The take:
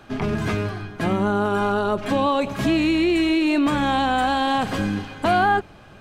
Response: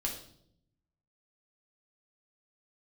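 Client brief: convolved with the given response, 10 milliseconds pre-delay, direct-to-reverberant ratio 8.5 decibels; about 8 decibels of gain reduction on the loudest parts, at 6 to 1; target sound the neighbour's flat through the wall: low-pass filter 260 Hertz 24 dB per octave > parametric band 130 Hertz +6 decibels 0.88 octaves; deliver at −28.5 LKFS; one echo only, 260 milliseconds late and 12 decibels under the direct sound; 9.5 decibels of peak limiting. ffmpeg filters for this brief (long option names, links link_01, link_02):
-filter_complex "[0:a]acompressor=threshold=-25dB:ratio=6,alimiter=limit=-24dB:level=0:latency=1,aecho=1:1:260:0.251,asplit=2[link_01][link_02];[1:a]atrim=start_sample=2205,adelay=10[link_03];[link_02][link_03]afir=irnorm=-1:irlink=0,volume=-11dB[link_04];[link_01][link_04]amix=inputs=2:normalize=0,lowpass=frequency=260:width=0.5412,lowpass=frequency=260:width=1.3066,equalizer=frequency=130:width_type=o:width=0.88:gain=6,volume=5.5dB"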